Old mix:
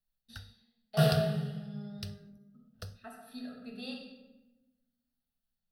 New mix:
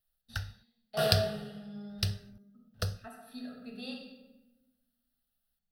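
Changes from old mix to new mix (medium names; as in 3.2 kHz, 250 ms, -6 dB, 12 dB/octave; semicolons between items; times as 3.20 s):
first sound +11.0 dB; second sound: add peaking EQ 150 Hz -14.5 dB 0.71 oct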